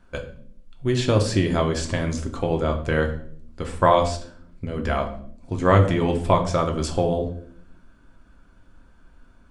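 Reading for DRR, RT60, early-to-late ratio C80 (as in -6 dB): 3.0 dB, 0.60 s, 14.0 dB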